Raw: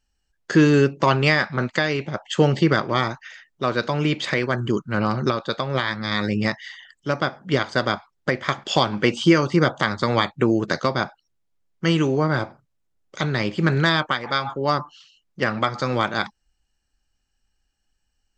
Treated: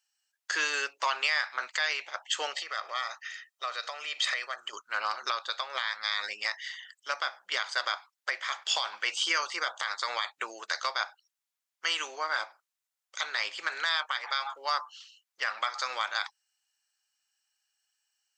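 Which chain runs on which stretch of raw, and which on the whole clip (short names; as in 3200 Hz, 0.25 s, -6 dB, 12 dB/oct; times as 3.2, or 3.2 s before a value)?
2.53–4.73 compressor 3:1, threshold -24 dBFS + comb 1.6 ms, depth 48%
whole clip: Bessel high-pass 1200 Hz, order 4; limiter -16.5 dBFS; high shelf 6000 Hz +6.5 dB; gain -1.5 dB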